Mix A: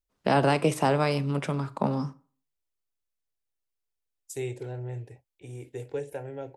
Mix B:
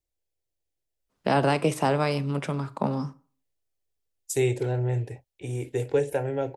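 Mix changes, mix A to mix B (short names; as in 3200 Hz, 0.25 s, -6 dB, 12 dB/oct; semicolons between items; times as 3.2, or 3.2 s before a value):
first voice: entry +1.00 s; second voice +9.5 dB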